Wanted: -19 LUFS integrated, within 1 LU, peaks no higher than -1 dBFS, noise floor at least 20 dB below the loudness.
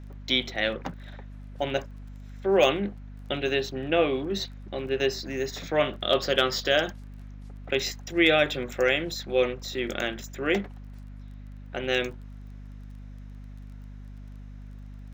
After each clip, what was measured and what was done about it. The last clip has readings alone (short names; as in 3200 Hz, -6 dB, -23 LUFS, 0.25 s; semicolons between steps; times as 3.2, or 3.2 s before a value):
ticks 20/s; hum 50 Hz; harmonics up to 250 Hz; hum level -39 dBFS; loudness -26.5 LUFS; peak -8.5 dBFS; loudness target -19.0 LUFS
-> de-click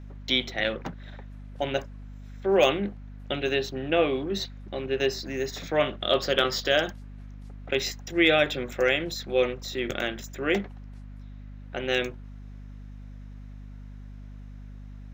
ticks 0.40/s; hum 50 Hz; harmonics up to 250 Hz; hum level -39 dBFS
-> notches 50/100/150/200/250 Hz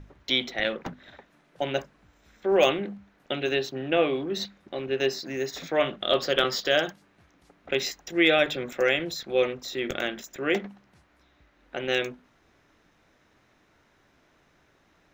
hum none; loudness -27.0 LUFS; peak -8.0 dBFS; loudness target -19.0 LUFS
-> gain +8 dB; limiter -1 dBFS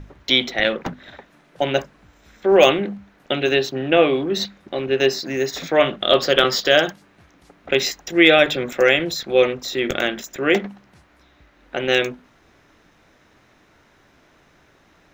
loudness -19.0 LUFS; peak -1.0 dBFS; noise floor -56 dBFS